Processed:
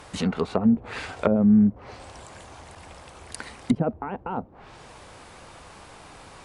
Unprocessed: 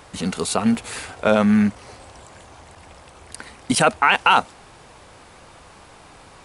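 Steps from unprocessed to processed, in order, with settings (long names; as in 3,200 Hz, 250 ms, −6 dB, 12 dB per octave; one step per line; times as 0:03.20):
treble cut that deepens with the level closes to 370 Hz, closed at −16.5 dBFS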